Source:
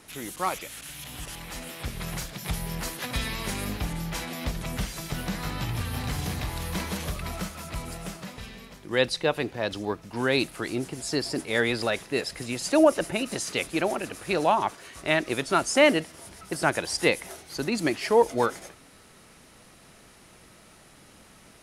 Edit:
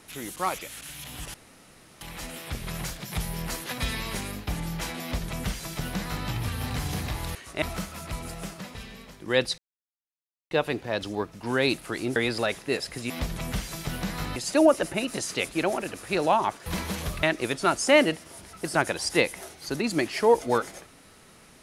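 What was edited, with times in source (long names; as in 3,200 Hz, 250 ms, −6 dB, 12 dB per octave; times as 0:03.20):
0:01.34: splice in room tone 0.67 s
0:03.31–0:03.80: fade out equal-power, to −9.5 dB
0:04.35–0:05.61: duplicate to 0:12.54
0:06.68–0:07.25: swap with 0:14.84–0:15.11
0:09.21: splice in silence 0.93 s
0:10.86–0:11.60: remove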